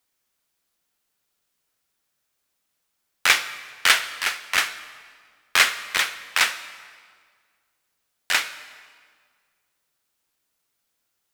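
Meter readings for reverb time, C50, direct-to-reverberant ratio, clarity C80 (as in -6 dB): 1.8 s, 13.0 dB, 11.5 dB, 14.0 dB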